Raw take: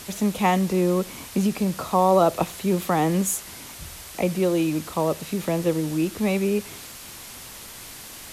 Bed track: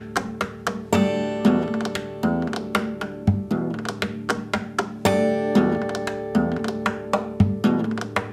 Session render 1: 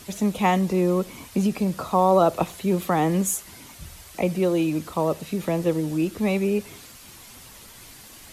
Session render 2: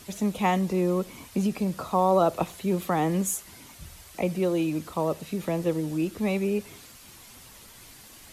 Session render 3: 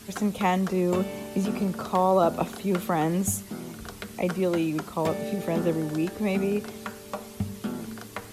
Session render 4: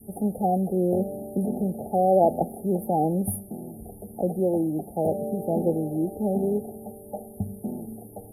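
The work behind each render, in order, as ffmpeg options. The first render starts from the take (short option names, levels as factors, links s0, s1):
-af "afftdn=nr=7:nf=-41"
-af "volume=0.668"
-filter_complex "[1:a]volume=0.224[s0];[0:a][s0]amix=inputs=2:normalize=0"
-af "adynamicequalizer=threshold=0.0224:dfrequency=830:dqfactor=0.78:tfrequency=830:tqfactor=0.78:attack=5:release=100:ratio=0.375:range=2:mode=boostabove:tftype=bell,afftfilt=real='re*(1-between(b*sr/4096,870,9200))':imag='im*(1-between(b*sr/4096,870,9200))':win_size=4096:overlap=0.75"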